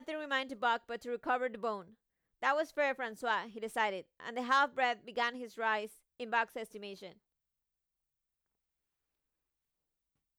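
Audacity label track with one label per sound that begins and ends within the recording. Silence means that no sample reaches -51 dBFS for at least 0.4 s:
2.420000	7.120000	sound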